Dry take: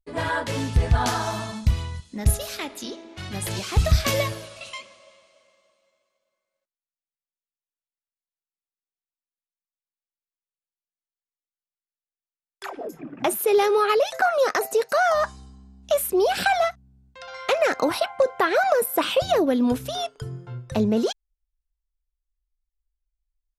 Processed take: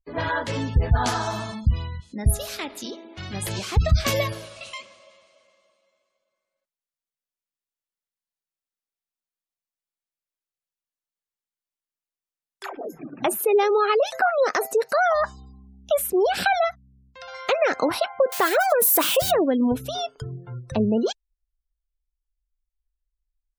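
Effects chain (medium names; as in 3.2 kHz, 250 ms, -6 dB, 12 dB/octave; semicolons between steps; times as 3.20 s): 18.32–19.31 s: zero-crossing glitches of -17 dBFS; spectral gate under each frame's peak -30 dB strong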